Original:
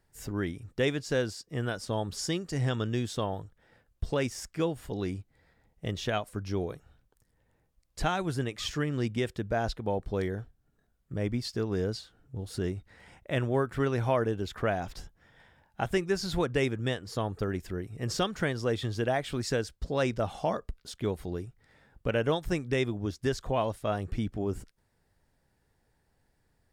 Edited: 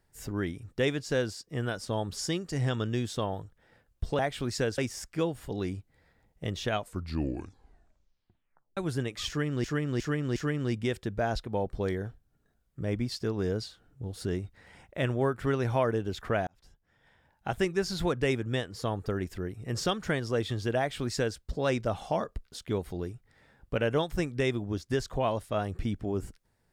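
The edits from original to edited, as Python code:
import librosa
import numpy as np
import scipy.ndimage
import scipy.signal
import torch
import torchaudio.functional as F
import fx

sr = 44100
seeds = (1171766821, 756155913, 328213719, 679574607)

y = fx.edit(x, sr, fx.tape_stop(start_s=6.18, length_s=2.0),
    fx.repeat(start_s=8.69, length_s=0.36, count=4),
    fx.fade_in_span(start_s=14.8, length_s=1.17),
    fx.duplicate(start_s=19.11, length_s=0.59, to_s=4.19), tone=tone)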